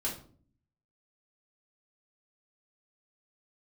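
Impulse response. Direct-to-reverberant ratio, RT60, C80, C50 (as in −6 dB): −5.5 dB, 0.50 s, 13.0 dB, 7.5 dB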